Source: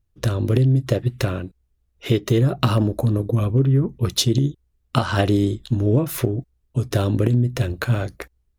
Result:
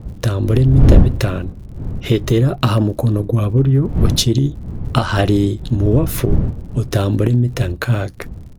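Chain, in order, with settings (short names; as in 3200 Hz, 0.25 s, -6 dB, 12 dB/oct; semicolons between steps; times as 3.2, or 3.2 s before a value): wind noise 110 Hz -21 dBFS; sine folder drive 6 dB, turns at 4.5 dBFS; crackle 85/s -32 dBFS; gain -6 dB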